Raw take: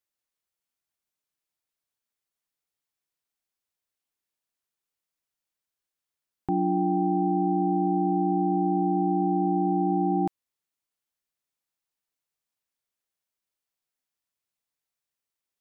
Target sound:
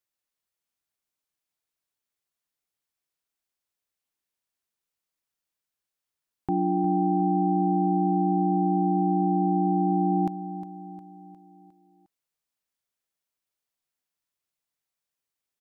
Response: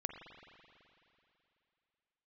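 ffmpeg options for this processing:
-af "aecho=1:1:357|714|1071|1428|1785:0.224|0.114|0.0582|0.0297|0.0151"

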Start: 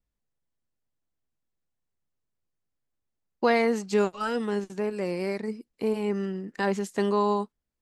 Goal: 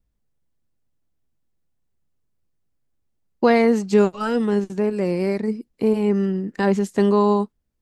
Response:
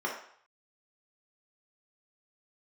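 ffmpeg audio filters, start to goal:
-af "lowshelf=f=440:g=9,volume=2.5dB"

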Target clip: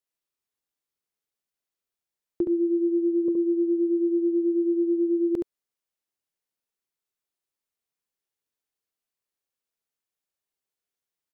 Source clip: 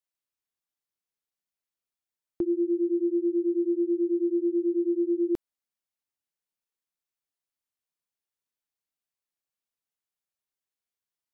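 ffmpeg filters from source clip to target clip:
-filter_complex "[0:a]asettb=1/sr,asplit=3[a][b][c];[a]atrim=end=3.284[d];[b]atrim=start=3.28:end=3.78,asetpts=PTS-STARTPTS,afade=t=in:d=0.004:c=qsin,afade=t=out:st=0.496:d=0.004:c=qsin,agate=range=-33dB:threshold=-29dB:ratio=3:detection=peak[e];[c]atrim=start=3.776[f];[d][e]acrossfade=d=0.004:c1=hsin:c2=qsin[g];[g][f]acrossfade=d=0.004:c1=qsin:c2=hsin,equalizer=f=420:w=2.1:g=4.5,aecho=1:1:70:0.596"

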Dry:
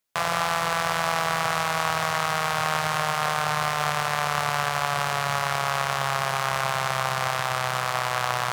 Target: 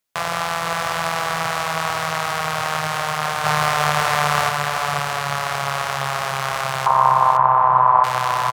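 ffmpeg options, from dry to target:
-filter_complex "[0:a]asettb=1/sr,asplit=3[a][b][c];[a]atrim=end=3.444[d];[b]atrim=start=3.44:end=4.49,asetpts=PTS-STARTPTS,afade=t=in:d=0.004:c=qsin,afade=t=out:st=1.046:d=0.004:c=qsin,acontrast=30[e];[c]atrim=start=4.486[f];[d][e]acrossfade=d=0.004:c1=hsin:c2=qsin[g];[g][f]acrossfade=d=0.004:c1=qsin:c2=hsin,asettb=1/sr,asplit=3[h][i][j];[h]atrim=end=6.864[k];[i]atrim=start=6.86:end=8.04,asetpts=PTS-STARTPTS,afade=t=in:d=0.004:c=qsin,afade=t=out:st=1.176:d=0.004:c=qsin,lowpass=f=990:t=q:w=11[l];[j]atrim=start=8.036[m];[k][l]acrossfade=d=0.004:c1=hsin:c2=qsin[n];[n][m]acrossfade=d=0.004:c1=qsin:c2=hsin,aecho=1:1:505:0.422,volume=1.5dB"

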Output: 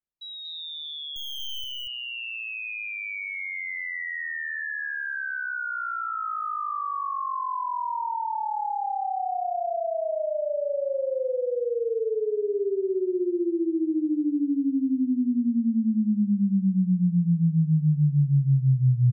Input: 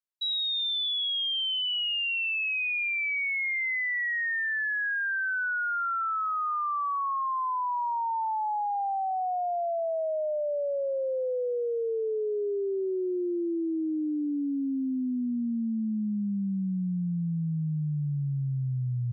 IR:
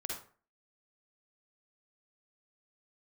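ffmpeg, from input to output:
-filter_complex "[0:a]lowpass=f=1.3k:p=1,lowshelf=f=180:g=11,asettb=1/sr,asplit=3[a][b][c];[a]atrim=end=1.164[d];[b]atrim=start=1.16:end=1.64,asetpts=PTS-STARTPTS,afade=t=in:d=0.004:c=qsin,afade=t=out:st=0.476:d=0.004:c=qsin,aeval=exprs='0.02*(cos(1*acos(clip(val(0)/0.02,-1,1)))-cos(1*PI/2))+0.000794*(cos(4*acos(clip(val(0)/0.02,-1,1)))-cos(4*PI/2))+0.000251*(cos(7*acos(clip(val(0)/0.02,-1,1)))-cos(7*PI/2))+0.00794*(cos(8*acos(clip(val(0)/0.02,-1,1)))-cos(8*PI/2))':c=same[e];[c]atrim=start=1.636[f];[d][e]acrossfade=d=0.004:c1=hsin:c2=qsin[g];[g][f]acrossfade=d=0.004:c1=qsin:c2=hsin,aecho=1:1:234:0.708"

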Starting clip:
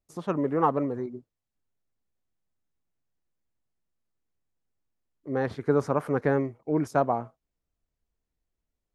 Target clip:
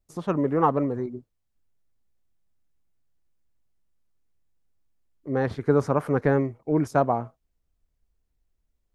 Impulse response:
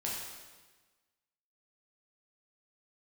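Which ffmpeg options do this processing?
-af "lowshelf=f=89:g=10,volume=2dB"

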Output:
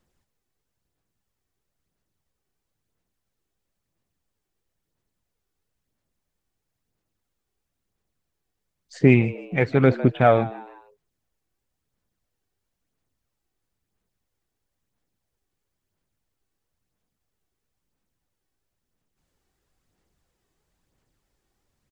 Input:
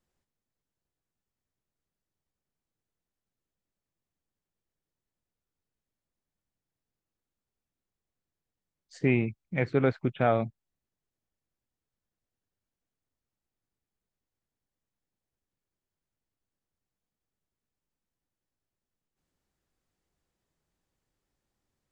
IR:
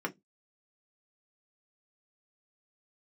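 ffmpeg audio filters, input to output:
-filter_complex "[0:a]asplit=4[a][b][c][d];[b]adelay=154,afreqshift=100,volume=-18dB[e];[c]adelay=308,afreqshift=200,volume=-25.7dB[f];[d]adelay=462,afreqshift=300,volume=-33.5dB[g];[a][e][f][g]amix=inputs=4:normalize=0,aphaser=in_gain=1:out_gain=1:delay=2.7:decay=0.35:speed=1:type=sinusoidal,volume=7dB"

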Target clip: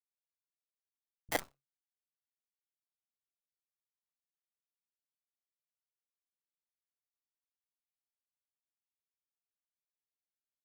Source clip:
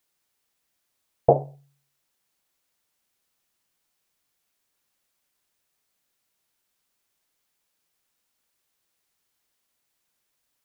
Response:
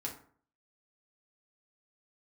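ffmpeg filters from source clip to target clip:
-filter_complex "[0:a]anlmdn=0.158,lowshelf=f=130:g=-4.5,bandreject=f=1k:w=12,acrossover=split=370[a][b];[a]alimiter=limit=-23.5dB:level=0:latency=1:release=134[c];[c][b]amix=inputs=2:normalize=0,acrusher=samples=33:mix=1:aa=0.000001,volume=20.5dB,asoftclip=hard,volume=-20.5dB,acrossover=split=160|570[d][e][f];[f]adelay=30[g];[e]adelay=60[h];[d][h][g]amix=inputs=3:normalize=0,aeval=exprs='0.168*(cos(1*acos(clip(val(0)/0.168,-1,1)))-cos(1*PI/2))+0.0266*(cos(2*acos(clip(val(0)/0.168,-1,1)))-cos(2*PI/2))+0.0596*(cos(3*acos(clip(val(0)/0.168,-1,1)))-cos(3*PI/2))+0.000944*(cos(5*acos(clip(val(0)/0.168,-1,1)))-cos(5*PI/2))+0.00841*(cos(8*acos(clip(val(0)/0.168,-1,1)))-cos(8*PI/2))':c=same,volume=-2dB"

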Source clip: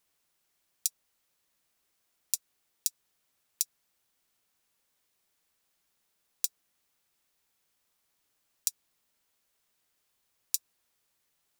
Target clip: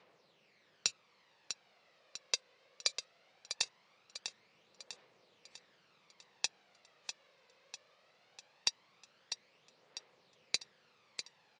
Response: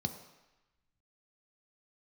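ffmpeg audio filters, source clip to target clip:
-af "asoftclip=type=tanh:threshold=-10dB,aphaser=in_gain=1:out_gain=1:delay=2:decay=0.53:speed=0.2:type=triangular,highpass=f=140:w=0.5412,highpass=f=140:w=1.3066,equalizer=f=270:t=q:w=4:g=-8,equalizer=f=510:t=q:w=4:g=8,equalizer=f=1.5k:t=q:w=4:g=-4,equalizer=f=3.3k:t=q:w=4:g=-5,lowpass=f=4k:w=0.5412,lowpass=f=4k:w=1.3066,aecho=1:1:648|1296|1944|2592|3240|3888:0.376|0.184|0.0902|0.0442|0.0217|0.0106,volume=13.5dB" -ar 24000 -c:a aac -b:a 48k

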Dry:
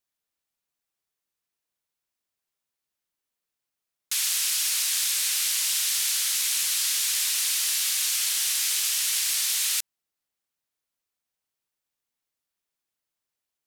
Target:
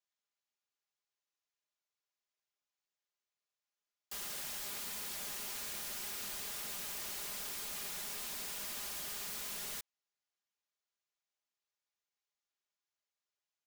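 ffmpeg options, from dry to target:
-af "aresample=16000,asoftclip=type=tanh:threshold=-24.5dB,aresample=44100,alimiter=level_in=1.5dB:limit=-24dB:level=0:latency=1:release=43,volume=-1.5dB,highpass=440,aeval=exprs='(mod(39.8*val(0)+1,2)-1)/39.8':c=same,aecho=1:1:4.9:0.53,volume=-7dB"

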